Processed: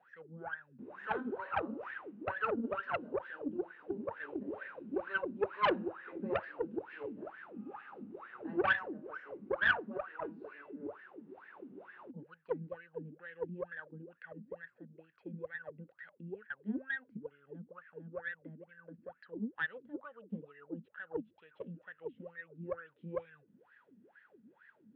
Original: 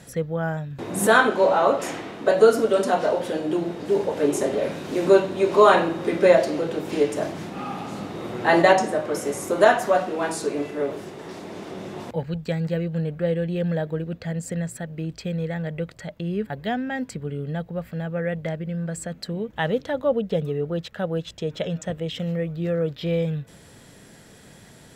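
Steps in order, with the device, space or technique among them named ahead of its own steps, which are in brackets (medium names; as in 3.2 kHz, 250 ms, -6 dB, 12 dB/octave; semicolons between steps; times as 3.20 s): wah-wah guitar rig (wah-wah 2.2 Hz 210–1800 Hz, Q 15; valve stage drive 25 dB, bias 0.6; cabinet simulation 100–3900 Hz, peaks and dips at 100 Hz +5 dB, 670 Hz -8 dB, 1.5 kHz +6 dB, 2.7 kHz +7 dB); trim +2.5 dB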